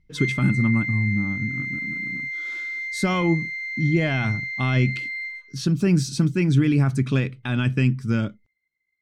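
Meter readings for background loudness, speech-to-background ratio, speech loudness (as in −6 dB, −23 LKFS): −28.0 LKFS, 5.0 dB, −23.0 LKFS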